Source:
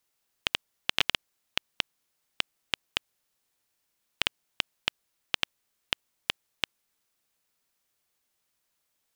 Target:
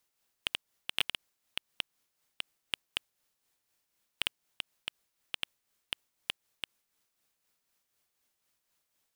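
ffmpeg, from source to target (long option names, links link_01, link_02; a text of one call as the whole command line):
ffmpeg -i in.wav -af "asoftclip=type=tanh:threshold=-14dB,tremolo=f=4:d=0.46,volume=1dB" out.wav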